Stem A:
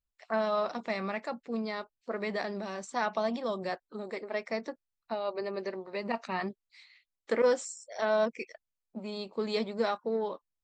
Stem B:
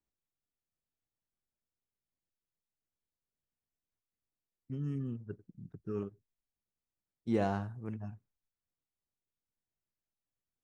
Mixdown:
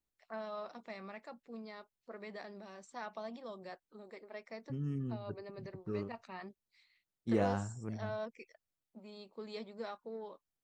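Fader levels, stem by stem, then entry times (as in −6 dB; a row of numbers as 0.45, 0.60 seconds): −13.5, −1.0 decibels; 0.00, 0.00 seconds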